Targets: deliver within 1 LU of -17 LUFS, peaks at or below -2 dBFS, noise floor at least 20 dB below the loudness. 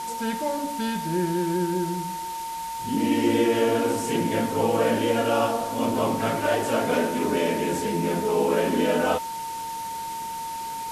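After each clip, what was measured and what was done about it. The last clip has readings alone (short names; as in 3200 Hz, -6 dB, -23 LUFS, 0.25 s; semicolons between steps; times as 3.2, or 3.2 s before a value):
steady tone 910 Hz; tone level -30 dBFS; noise floor -33 dBFS; noise floor target -45 dBFS; loudness -25.0 LUFS; peak -10.5 dBFS; loudness target -17.0 LUFS
-> notch 910 Hz, Q 30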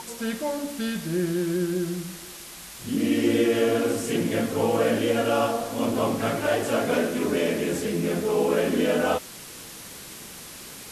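steady tone none; noise floor -42 dBFS; noise floor target -45 dBFS
-> noise print and reduce 6 dB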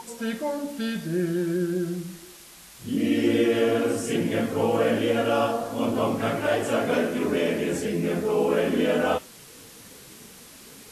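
noise floor -47 dBFS; loudness -25.0 LUFS; peak -10.5 dBFS; loudness target -17.0 LUFS
-> gain +8 dB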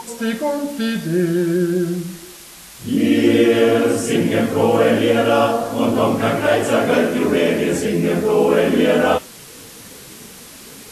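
loudness -17.0 LUFS; peak -2.5 dBFS; noise floor -39 dBFS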